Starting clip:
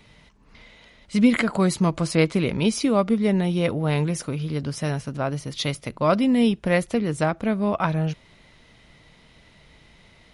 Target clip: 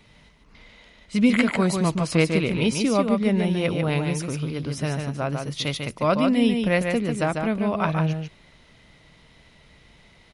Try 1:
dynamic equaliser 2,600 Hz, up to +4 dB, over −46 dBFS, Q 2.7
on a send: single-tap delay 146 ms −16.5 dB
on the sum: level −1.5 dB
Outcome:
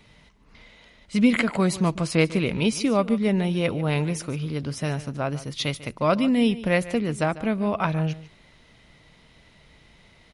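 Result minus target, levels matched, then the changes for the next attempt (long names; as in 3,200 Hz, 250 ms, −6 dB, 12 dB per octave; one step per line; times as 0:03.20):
echo-to-direct −11.5 dB
change: single-tap delay 146 ms −5 dB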